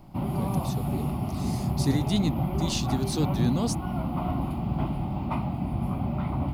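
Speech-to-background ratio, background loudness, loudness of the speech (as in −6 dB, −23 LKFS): 0.0 dB, −29.5 LKFS, −29.5 LKFS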